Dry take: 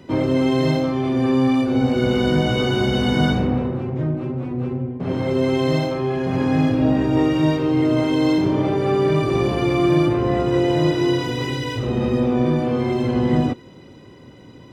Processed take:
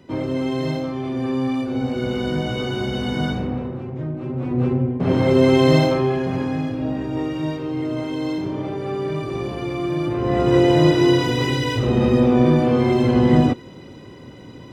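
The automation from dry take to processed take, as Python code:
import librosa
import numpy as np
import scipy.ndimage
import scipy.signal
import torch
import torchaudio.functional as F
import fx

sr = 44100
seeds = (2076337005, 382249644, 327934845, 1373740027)

y = fx.gain(x, sr, db=fx.line((4.13, -5.0), (4.6, 5.0), (5.93, 5.0), (6.63, -7.0), (9.98, -7.0), (10.51, 3.5)))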